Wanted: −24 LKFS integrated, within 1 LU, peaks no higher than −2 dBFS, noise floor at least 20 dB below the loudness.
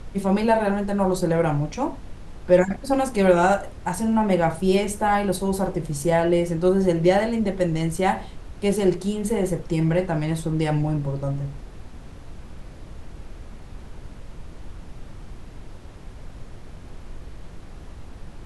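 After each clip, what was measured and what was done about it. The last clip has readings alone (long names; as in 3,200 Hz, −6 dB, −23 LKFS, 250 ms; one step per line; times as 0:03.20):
background noise floor −41 dBFS; target noise floor −43 dBFS; integrated loudness −22.5 LKFS; sample peak −4.5 dBFS; target loudness −24.0 LKFS
→ noise reduction from a noise print 6 dB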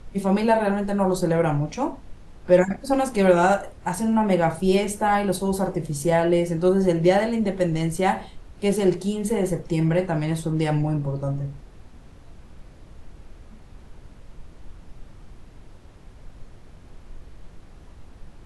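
background noise floor −47 dBFS; integrated loudness −22.5 LKFS; sample peak −4.5 dBFS; target loudness −24.0 LKFS
→ level −1.5 dB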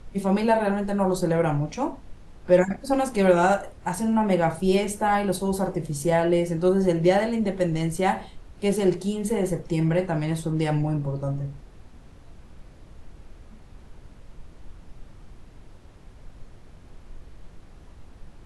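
integrated loudness −24.0 LKFS; sample peak −6.0 dBFS; background noise floor −49 dBFS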